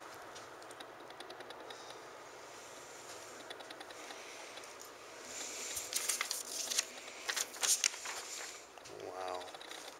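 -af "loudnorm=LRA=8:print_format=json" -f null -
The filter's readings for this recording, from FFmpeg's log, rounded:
"input_i" : "-38.6",
"input_tp" : "-13.2",
"input_lra" : "13.4",
"input_thresh" : "-49.6",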